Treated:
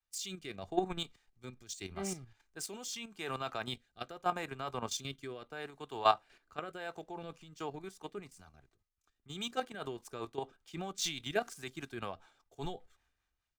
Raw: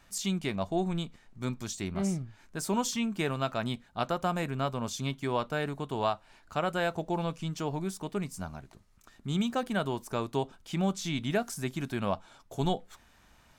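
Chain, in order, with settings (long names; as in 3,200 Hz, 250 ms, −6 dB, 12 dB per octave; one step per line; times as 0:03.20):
running median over 3 samples
low-shelf EQ 440 Hz −10.5 dB
comb filter 2.5 ms, depth 36%
output level in coarse steps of 10 dB
rotating-speaker cabinet horn 0.8 Hz, later 5 Hz, at 0:06.76
multiband upward and downward expander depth 70%
level +2.5 dB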